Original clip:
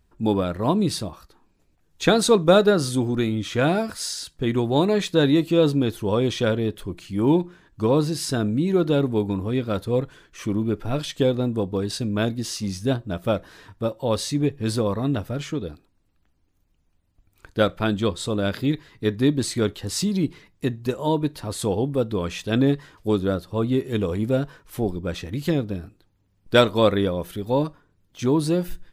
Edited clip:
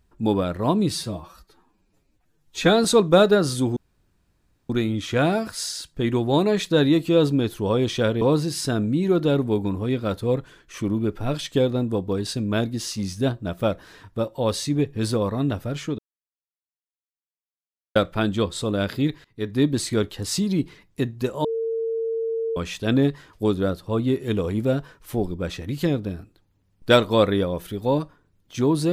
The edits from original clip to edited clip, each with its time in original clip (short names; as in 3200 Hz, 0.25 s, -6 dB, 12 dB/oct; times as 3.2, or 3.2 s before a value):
0.91–2.2 stretch 1.5×
3.12 insert room tone 0.93 s
6.64–7.86 cut
15.63–17.6 mute
18.89–19.29 fade in, from -19 dB
21.09–22.21 bleep 453 Hz -22.5 dBFS